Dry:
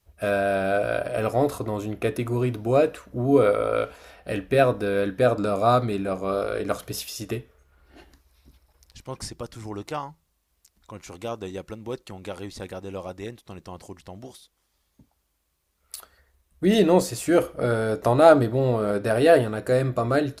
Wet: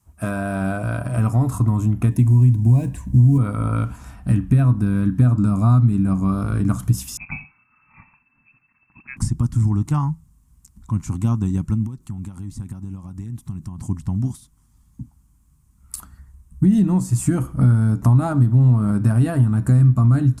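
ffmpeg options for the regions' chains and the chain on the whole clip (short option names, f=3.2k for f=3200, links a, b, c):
-filter_complex "[0:a]asettb=1/sr,asplit=3[a][b][c];[a]atrim=end=2.114[d];[b]atrim=start=2.11:end=3.38,asetpts=PTS-STARTPTS,afade=t=in:d=0.004:c=qsin,afade=t=out:st=1.266:d=0.004:c=qsin,asubboost=boost=4:cutoff=240,acrusher=bits=7:mode=log:mix=0:aa=0.000001,asuperstop=centerf=1300:order=4:qfactor=2.3[e];[c]atrim=start=3.376[f];[d][e]acrossfade=d=0.004:c1=hsin:c2=qsin[g];[g][f]acrossfade=d=0.004:c1=qsin:c2=hsin,asettb=1/sr,asplit=3[h][i][j];[h]atrim=end=7.174[k];[i]atrim=start=7.17:end=9.17,asetpts=PTS-STARTPTS,afade=t=in:d=0.004:c=qsin,afade=t=out:st=1.996:d=0.004:c=qsin,aecho=1:1:83:0.168,atrim=end_sample=88200,lowpass=f=2.3k:t=q:w=0.5098,lowpass=f=2.3k:t=q:w=0.6013,lowpass=f=2.3k:t=q:w=0.9,lowpass=f=2.3k:t=q:w=2.563,afreqshift=-2700[l];[j]atrim=start=9.166[m];[k][l]acrossfade=d=0.004:c1=hsin:c2=qsin[n];[n][m]acrossfade=d=0.004:c1=qsin:c2=hsin,asettb=1/sr,asplit=3[o][p][q];[o]atrim=end=11.864[r];[p]atrim=start=11.86:end=13.79,asetpts=PTS-STARTPTS,afade=t=in:d=0.004:c=qsin,afade=t=out:st=1.926:d=0.004:c=qsin,highshelf=f=8.9k:g=6,acompressor=threshold=-45dB:ratio=8:attack=3.2:release=140:knee=1:detection=peak[s];[q]atrim=start=13.786[t];[r][s]acrossfade=d=0.004:c1=hsin:c2=qsin[u];[u][t]acrossfade=d=0.004:c1=qsin:c2=hsin,asubboost=boost=8:cutoff=170,acompressor=threshold=-23dB:ratio=6,equalizer=f=125:t=o:w=1:g=10,equalizer=f=250:t=o:w=1:g=12,equalizer=f=500:t=o:w=1:g=-12,equalizer=f=1k:t=o:w=1:g=11,equalizer=f=2k:t=o:w=1:g=-3,equalizer=f=4k:t=o:w=1:g=-8,equalizer=f=8k:t=o:w=1:g=11"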